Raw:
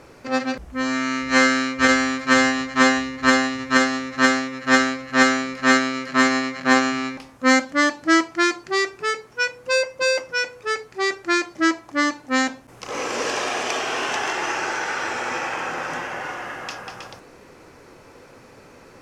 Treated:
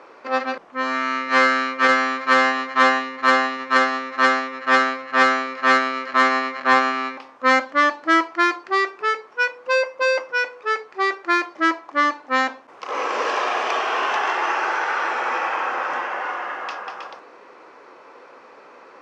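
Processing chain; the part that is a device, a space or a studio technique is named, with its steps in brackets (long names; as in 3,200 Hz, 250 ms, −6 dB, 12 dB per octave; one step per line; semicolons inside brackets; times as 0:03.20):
intercom (band-pass filter 400–4,200 Hz; parametric band 1,100 Hz +6 dB 0.59 octaves; soft clipping −8 dBFS, distortion −18 dB)
high-pass filter 340 Hz 6 dB per octave
spectral tilt −1.5 dB per octave
level +2.5 dB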